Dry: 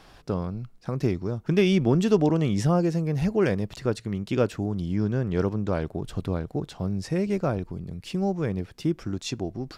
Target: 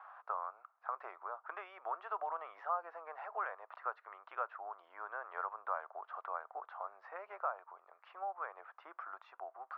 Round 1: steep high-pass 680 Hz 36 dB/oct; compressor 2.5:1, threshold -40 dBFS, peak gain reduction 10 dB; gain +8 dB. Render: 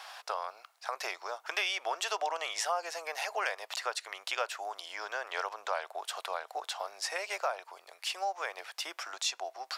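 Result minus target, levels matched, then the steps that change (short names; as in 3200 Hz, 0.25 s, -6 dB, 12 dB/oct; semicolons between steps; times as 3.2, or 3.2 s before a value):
1000 Hz band -3.5 dB
add after compressor: ladder low-pass 1400 Hz, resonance 60%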